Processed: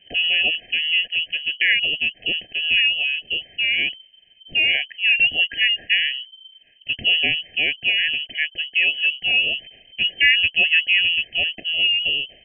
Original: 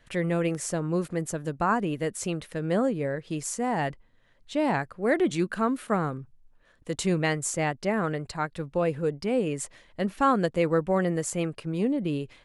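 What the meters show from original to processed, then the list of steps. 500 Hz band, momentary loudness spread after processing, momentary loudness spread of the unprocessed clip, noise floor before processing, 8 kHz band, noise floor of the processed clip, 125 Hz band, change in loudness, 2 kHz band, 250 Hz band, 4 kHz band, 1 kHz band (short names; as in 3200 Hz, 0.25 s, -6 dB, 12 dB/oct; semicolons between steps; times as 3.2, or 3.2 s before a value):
-15.0 dB, 9 LU, 8 LU, -60 dBFS, under -40 dB, -54 dBFS, under -15 dB, +9.5 dB, +17.5 dB, -17.5 dB, +26.5 dB, under -15 dB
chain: inverted band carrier 3100 Hz; brick-wall FIR band-stop 770–1600 Hz; gain +6.5 dB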